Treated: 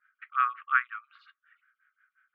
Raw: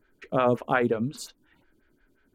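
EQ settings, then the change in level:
linear-phase brick-wall high-pass 1,100 Hz
Bessel low-pass filter 1,700 Hz, order 4
high-frequency loss of the air 340 metres
+8.5 dB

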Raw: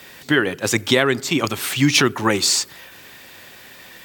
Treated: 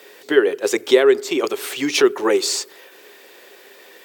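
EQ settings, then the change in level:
high-pass with resonance 410 Hz, resonance Q 4.9
−4.5 dB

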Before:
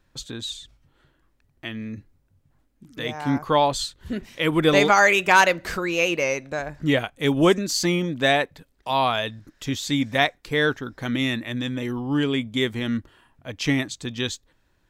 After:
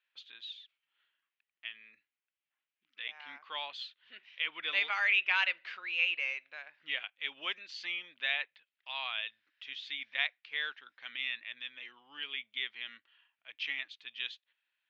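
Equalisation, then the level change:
high-pass with resonance 2,800 Hz, resonance Q 2.4
high-frequency loss of the air 220 metres
head-to-tape spacing loss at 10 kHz 30 dB
0.0 dB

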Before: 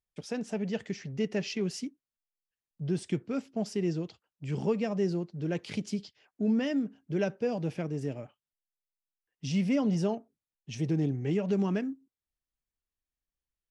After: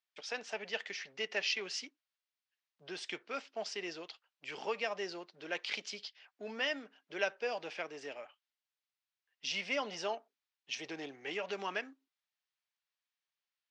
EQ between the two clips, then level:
band-pass filter 660–4,800 Hz
high-frequency loss of the air 110 metres
spectral tilt +3.5 dB per octave
+3.5 dB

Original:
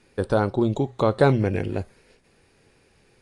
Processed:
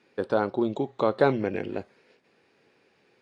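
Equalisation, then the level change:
band-pass filter 220–4,400 Hz
−2.5 dB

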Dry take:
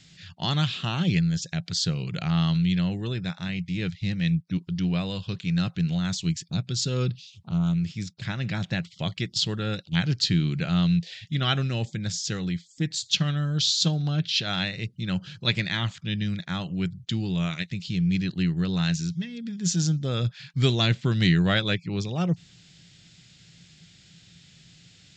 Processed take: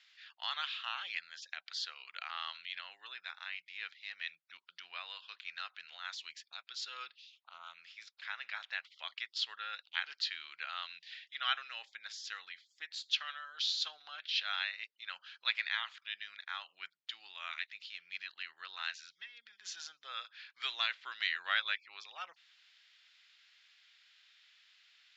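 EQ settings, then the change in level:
high-pass filter 1,100 Hz 24 dB per octave
low-pass with resonance 7,100 Hz, resonance Q 2.2
high-frequency loss of the air 340 metres
−2.0 dB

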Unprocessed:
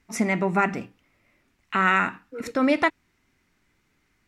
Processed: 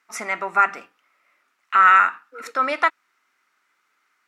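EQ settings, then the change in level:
high-pass filter 630 Hz 12 dB per octave
parametric band 1,300 Hz +11 dB 0.51 octaves
0.0 dB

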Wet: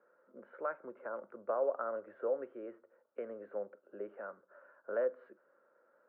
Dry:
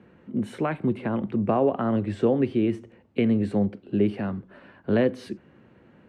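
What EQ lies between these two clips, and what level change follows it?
high-pass with resonance 550 Hz, resonance Q 4.9
transistor ladder low-pass 1,500 Hz, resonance 75%
parametric band 750 Hz −6.5 dB 0.21 octaves
−8.0 dB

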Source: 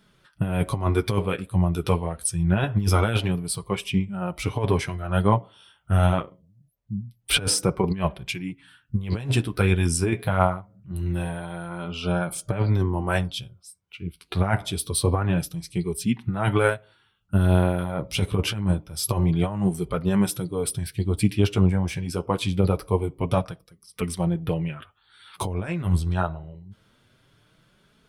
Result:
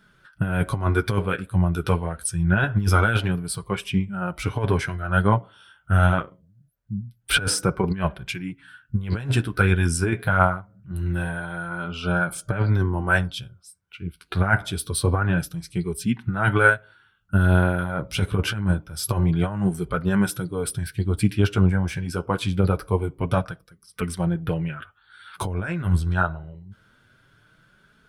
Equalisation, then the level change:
low-shelf EQ 210 Hz +3.5 dB
parametric band 1,500 Hz +13 dB 0.39 octaves
−1.5 dB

